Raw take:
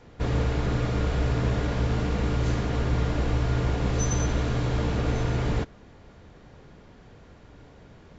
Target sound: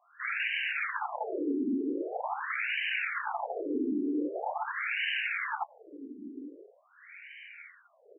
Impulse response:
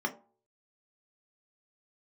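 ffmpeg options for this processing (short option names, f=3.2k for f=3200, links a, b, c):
-filter_complex "[0:a]acrossover=split=120|630[a][b][c];[c]acontrast=88[d];[a][b][d]amix=inputs=3:normalize=0,asplit=3[e][f][g];[e]bandpass=f=270:t=q:w=8,volume=0dB[h];[f]bandpass=f=2.29k:t=q:w=8,volume=-6dB[i];[g]bandpass=f=3.01k:t=q:w=8,volume=-9dB[j];[h][i][j]amix=inputs=3:normalize=0,aeval=exprs='0.0473*sin(PI/2*5.01*val(0)/0.0473)':c=same,aecho=1:1:411:0.0708,afftfilt=real='re*between(b*sr/1024,300*pow(2200/300,0.5+0.5*sin(2*PI*0.44*pts/sr))/1.41,300*pow(2200/300,0.5+0.5*sin(2*PI*0.44*pts/sr))*1.41)':imag='im*between(b*sr/1024,300*pow(2200/300,0.5+0.5*sin(2*PI*0.44*pts/sr))/1.41,300*pow(2200/300,0.5+0.5*sin(2*PI*0.44*pts/sr))*1.41)':win_size=1024:overlap=0.75,volume=4dB"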